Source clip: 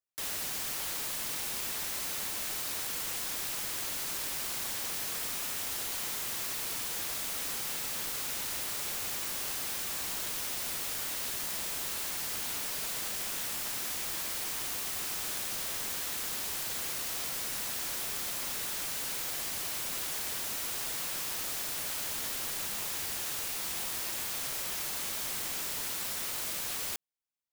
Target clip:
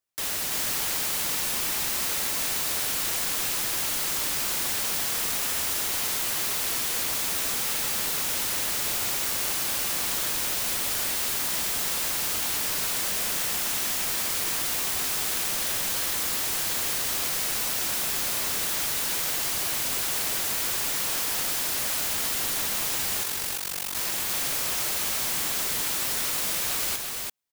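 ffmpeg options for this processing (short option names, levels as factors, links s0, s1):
-filter_complex "[0:a]asettb=1/sr,asplit=3[s0][s1][s2];[s0]atrim=end=23.234[s3];[s1]atrim=start=23.23:end=23.96,asetpts=PTS-STARTPTS,afade=t=in:d=0.004:c=qsin,afade=t=out:st=0.726:d=0.004:c=qsin,tremolo=f=47:d=1[s4];[s2]atrim=start=23.956[s5];[s3][s4]acrossfade=d=0.004:c1=hsin:c2=qsin[s6];[s6][s5]acrossfade=d=0.004:c1=qsin:c2=hsin,aecho=1:1:338:0.668,volume=2.11"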